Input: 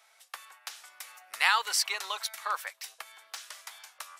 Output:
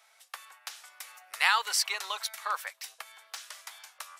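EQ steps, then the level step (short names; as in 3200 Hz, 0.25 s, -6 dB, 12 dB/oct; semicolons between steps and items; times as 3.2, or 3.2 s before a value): bell 270 Hz -12 dB 0.43 oct; 0.0 dB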